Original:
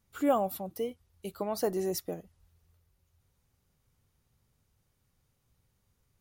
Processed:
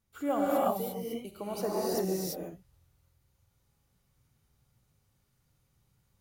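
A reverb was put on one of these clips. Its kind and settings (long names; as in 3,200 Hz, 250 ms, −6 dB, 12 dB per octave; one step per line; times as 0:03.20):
reverb whose tail is shaped and stops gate 370 ms rising, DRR −6 dB
level −5.5 dB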